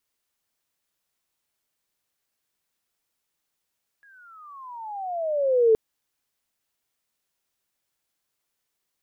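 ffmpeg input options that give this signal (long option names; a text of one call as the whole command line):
ffmpeg -f lavfi -i "aevalsrc='pow(10,(-13+38*(t/1.72-1))/20)*sin(2*PI*1680*1.72/(-23.5*log(2)/12)*(exp(-23.5*log(2)/12*t/1.72)-1))':duration=1.72:sample_rate=44100" out.wav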